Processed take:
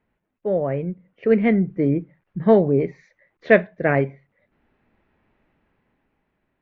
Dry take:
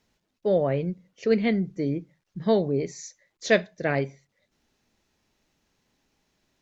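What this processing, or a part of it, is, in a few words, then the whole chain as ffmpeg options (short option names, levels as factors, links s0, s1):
action camera in a waterproof case: -af "lowpass=f=2300:w=0.5412,lowpass=f=2300:w=1.3066,dynaudnorm=f=250:g=11:m=4.47" -ar 44100 -c:a aac -b:a 64k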